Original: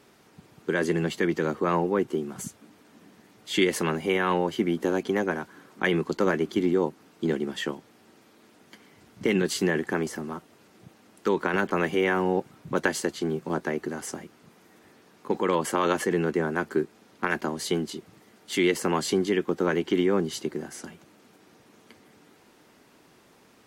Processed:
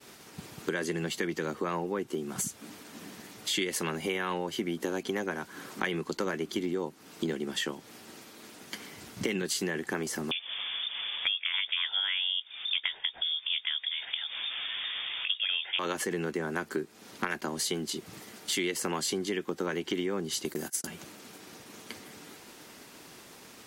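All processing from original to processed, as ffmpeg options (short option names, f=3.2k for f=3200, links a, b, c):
-filter_complex "[0:a]asettb=1/sr,asplit=3[a][b][c];[a]atrim=end=10.314[d];[b]atrim=start=10.31:end=15.79,asetpts=PTS-STARTPTS,afade=t=in:d=0.004:c=qsin,afade=t=out:st=5.476:d=0.004:c=qsin,asubboost=boost=10:cutoff=61,acompressor=mode=upward:threshold=-32dB:ratio=2.5:attack=3.2:release=140:knee=2.83:detection=peak,lowpass=f=3.1k:t=q:w=0.5098,lowpass=f=3.1k:t=q:w=0.6013,lowpass=f=3.1k:t=q:w=0.9,lowpass=f=3.1k:t=q:w=2.563,afreqshift=-3700[e];[c]atrim=start=15.786[f];[d][e]acrossfade=d=0.004:c1=hsin:c2=qsin[g];[g][f]acrossfade=d=0.004:c1=qsin:c2=hsin,asettb=1/sr,asplit=3[h][i][j];[h]atrim=end=20.454[k];[i]atrim=start=20.45:end=20.87,asetpts=PTS-STARTPTS,afade=t=in:d=0.004:c=qsin,afade=t=out:st=0.416:d=0.004:c=qsin,agate=range=-30dB:threshold=-41dB:ratio=16:release=100:detection=peak,aemphasis=mode=production:type=50fm[l];[j]atrim=start=20.866[m];[k][l]acrossfade=d=0.004:c1=hsin:c2=qsin[n];[n][m]acrossfade=d=0.004:c1=qsin:c2=hsin,agate=range=-33dB:threshold=-54dB:ratio=3:detection=peak,highshelf=f=2.4k:g=9,acompressor=threshold=-38dB:ratio=4,volume=6.5dB"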